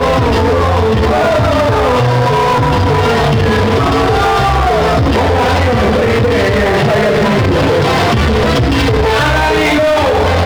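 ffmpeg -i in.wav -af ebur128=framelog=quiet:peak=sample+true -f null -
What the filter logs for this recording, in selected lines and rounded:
Integrated loudness:
  I:         -11.1 LUFS
  Threshold: -21.1 LUFS
Loudness range:
  LRA:         0.2 LU
  Threshold: -31.1 LUFS
  LRA low:   -11.2 LUFS
  LRA high:  -11.0 LUFS
Sample peak:
  Peak:       -7.3 dBFS
True peak:
  Peak:       -7.3 dBFS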